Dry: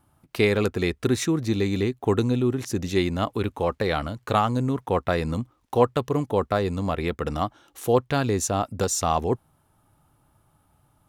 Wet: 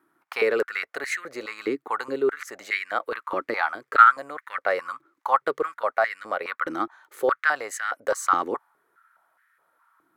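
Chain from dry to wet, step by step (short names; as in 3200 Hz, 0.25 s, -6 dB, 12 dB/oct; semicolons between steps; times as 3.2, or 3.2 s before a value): varispeed +9%; band shelf 1600 Hz +10.5 dB 1.2 oct; stepped high-pass 4.8 Hz 320–1800 Hz; gain -8 dB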